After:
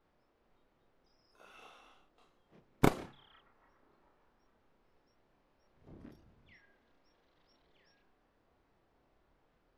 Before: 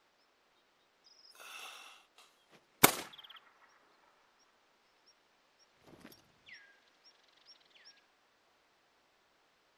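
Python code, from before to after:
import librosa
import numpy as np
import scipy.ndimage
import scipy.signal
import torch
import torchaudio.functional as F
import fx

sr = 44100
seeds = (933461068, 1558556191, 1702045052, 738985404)

y = fx.tilt_eq(x, sr, slope=-4.5)
y = fx.doubler(y, sr, ms=30.0, db=-2.5)
y = y * librosa.db_to_amplitude(-6.0)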